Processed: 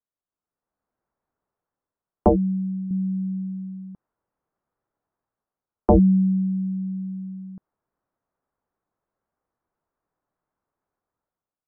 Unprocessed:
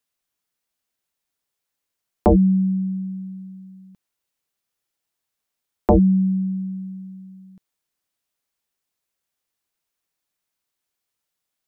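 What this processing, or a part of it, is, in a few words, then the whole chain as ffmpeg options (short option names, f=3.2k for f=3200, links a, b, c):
action camera in a waterproof case: -filter_complex "[0:a]asettb=1/sr,asplit=3[a][b][c];[a]atrim=end=2.294[d];[b]atrim=start=2.29:end=2.91,asetpts=PTS-STARTPTS,afade=t=in:d=0.004:c=qsin,afade=t=out:st=0.616:d=0.004:c=qsin,bass=f=250:g=-9,treble=f=4k:g=-6[e];[c]atrim=start=2.906[f];[d][e]acrossfade=d=0.004:c1=hsin:c2=qsin[g];[g][f]acrossfade=d=0.004:c1=qsin:c2=hsin,lowpass=f=1.3k:w=0.5412,lowpass=f=1.3k:w=1.3066,dynaudnorm=f=260:g=5:m=15.5dB,volume=-7.5dB" -ar 44100 -c:a aac -b:a 64k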